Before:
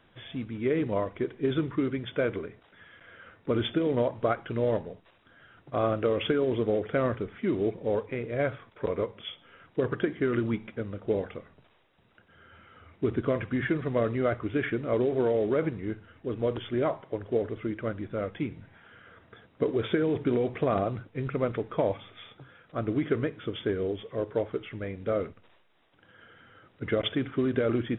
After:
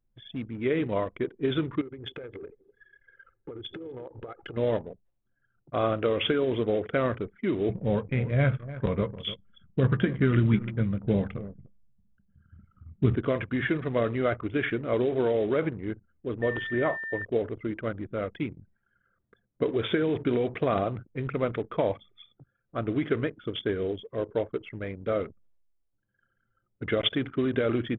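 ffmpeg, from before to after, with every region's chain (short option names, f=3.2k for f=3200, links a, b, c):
-filter_complex "[0:a]asettb=1/sr,asplit=3[a][b][c];[a]atrim=end=1.814[d];[b]atrim=start=1.81:end=4.57,asetpts=PTS-STARTPTS,afade=t=in:d=0.004:c=qsin,afade=t=out:st=2.756:d=0.004:c=qsin,aecho=1:1:2.4:0.58,atrim=end_sample=121716,acompressor=threshold=-36dB:ratio=16:attack=3.2:release=140:knee=1:detection=peak,asplit=2[e][f];[f]adelay=250,lowpass=f=1.6k:p=1,volume=-12dB,asplit=2[g][h];[h]adelay=250,lowpass=f=1.6k:p=1,volume=0.41,asplit=2[i][j];[j]adelay=250,lowpass=f=1.6k:p=1,volume=0.41,asplit=2[k][l];[l]adelay=250,lowpass=f=1.6k:p=1,volume=0.41[m];[e][g][i][k][m]amix=inputs=5:normalize=0,atrim=end_sample=121716[n];[c]atrim=start=4.566[o];[d][n]acrossfade=d=0.004:c1=hsin:c2=qsin[p];[p][o]acrossfade=d=0.004:c1=qsin:c2=hsin,asettb=1/sr,asplit=3[q][r][s];[q]atrim=end=7.694[t];[r]atrim=start=7.69:end=13.15,asetpts=PTS-STARTPTS,afade=t=in:d=0.004:c=qsin,afade=t=out:st=5.456:d=0.004:c=qsin,lowshelf=f=250:t=q:w=1.5:g=9.5,asplit=2[u][v];[v]adelay=15,volume=-10.5dB[w];[u][w]amix=inputs=2:normalize=0,atrim=end_sample=240786,aecho=1:1:296:0.178,atrim=end_sample=240786[x];[s]atrim=start=13.146[y];[t][x]acrossfade=d=0.004:c1=hsin:c2=qsin[z];[z][y]acrossfade=d=0.004:c1=qsin:c2=hsin,asettb=1/sr,asplit=3[aa][ab][ac];[aa]atrim=end=16.424[ad];[ab]atrim=start=16.42:end=17.25,asetpts=PTS-STARTPTS,afade=t=in:d=0.004:c=qsin,afade=t=out:st=0.826:d=0.004:c=qsin,lowpass=3k,aeval=exprs='val(0)+0.0178*sin(2*PI*1800*n/s)':c=same[ae];[ac]atrim=start=17.246[af];[ad][ae]acrossfade=d=0.004:c1=hsin:c2=qsin[ag];[ag][af]acrossfade=d=0.004:c1=qsin:c2=hsin,anlmdn=0.398,highshelf=f=2.9k:g=10"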